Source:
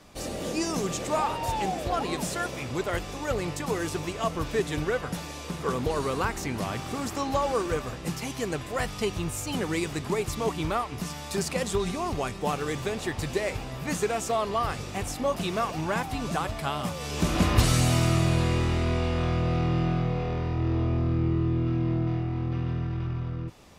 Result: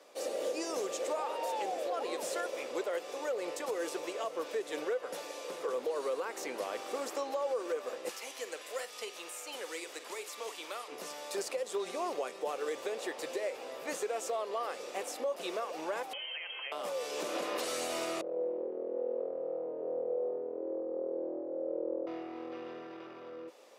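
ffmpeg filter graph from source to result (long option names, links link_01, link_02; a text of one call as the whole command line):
ffmpeg -i in.wav -filter_complex "[0:a]asettb=1/sr,asplit=3[link_01][link_02][link_03];[link_01]atrim=end=8.094[link_04];[link_02]atrim=start=8.09:end=10.88,asetpts=PTS-STARTPTS,afade=type=in:duration=0.004:curve=qsin,afade=type=out:start_time=2.786:duration=0.004:curve=qsin,tiltshelf=frequency=1300:gain=-9.5,acrossover=split=360|1100|2600[link_05][link_06][link_07][link_08];[link_05]acompressor=threshold=-45dB:ratio=3[link_09];[link_06]acompressor=threshold=-43dB:ratio=3[link_10];[link_07]acompressor=threshold=-44dB:ratio=3[link_11];[link_08]acompressor=threshold=-43dB:ratio=3[link_12];[link_09][link_10][link_11][link_12]amix=inputs=4:normalize=0,asplit=2[link_13][link_14];[link_14]adelay=50,volume=-13dB[link_15];[link_13][link_15]amix=inputs=2:normalize=0,atrim=end_sample=123039[link_16];[link_03]atrim=start=10.876[link_17];[link_04][link_16]acrossfade=duration=0.004:curve1=hsin:curve2=qsin[link_18];[link_18][link_17]acrossfade=duration=0.004:curve1=qsin:curve2=hsin,asettb=1/sr,asplit=3[link_19][link_20][link_21];[link_19]atrim=end=16.134[link_22];[link_20]atrim=start=16.13:end=16.72,asetpts=PTS-STARTPTS,afade=type=in:duration=0.004:curve=qsin,afade=type=out:start_time=0.586:duration=0.004:curve=qsin,highpass=80,acompressor=threshold=-31dB:ratio=6:attack=3.2:release=140:knee=1:detection=peak,lowpass=frequency=2800:width_type=q:width=0.5098,lowpass=frequency=2800:width_type=q:width=0.6013,lowpass=frequency=2800:width_type=q:width=0.9,lowpass=frequency=2800:width_type=q:width=2.563,afreqshift=-3300[link_23];[link_21]atrim=start=16.716[link_24];[link_22][link_23]acrossfade=duration=0.004:curve1=hsin:curve2=qsin[link_25];[link_25][link_24]acrossfade=duration=0.004:curve1=qsin:curve2=hsin,asettb=1/sr,asplit=3[link_26][link_27][link_28];[link_26]atrim=end=18.214[link_29];[link_27]atrim=start=18.21:end=22.07,asetpts=PTS-STARTPTS,afade=type=in:duration=0.004:curve=qsin,afade=type=out:start_time=3.856:duration=0.004:curve=qsin,volume=33dB,asoftclip=hard,volume=-33dB,lowpass=frequency=480:width_type=q:width=2.5[link_30];[link_28]atrim=start=22.066[link_31];[link_29][link_30]acrossfade=duration=0.004:curve1=hsin:curve2=qsin[link_32];[link_32][link_31]acrossfade=duration=0.004:curve1=qsin:curve2=hsin,highpass=frequency=340:width=0.5412,highpass=frequency=340:width=1.3066,equalizer=frequency=520:width_type=o:width=0.44:gain=11.5,alimiter=limit=-20dB:level=0:latency=1:release=178,volume=-6dB" out.wav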